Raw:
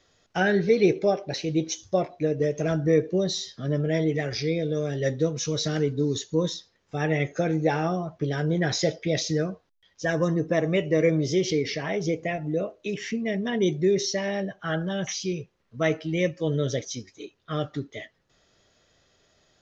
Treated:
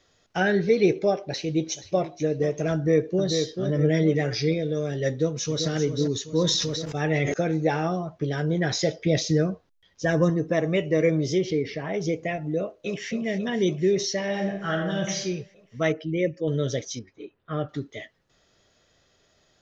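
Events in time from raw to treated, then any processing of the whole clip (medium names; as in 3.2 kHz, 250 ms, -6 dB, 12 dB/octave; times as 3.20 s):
1.21–2.10 s: echo throw 480 ms, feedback 20%, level -15 dB
2.74–3.26 s: echo throw 440 ms, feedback 40%, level -5.5 dB
3.78–4.54 s: comb 6.8 ms, depth 63%
5.10–5.68 s: echo throw 390 ms, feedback 50%, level -8 dB
6.30–7.34 s: decay stretcher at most 25 dB/s
8.99–10.30 s: bass shelf 450 Hz +5.5 dB
11.37–11.93 s: low-pass 2.2 kHz -> 1.3 kHz 6 dB/octave
12.57–13.11 s: echo throw 270 ms, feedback 80%, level -11 dB
14.25–15.20 s: reverb throw, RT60 0.82 s, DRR 2 dB
15.92–16.48 s: resonances exaggerated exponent 1.5
16.99–17.69 s: low-pass 2 kHz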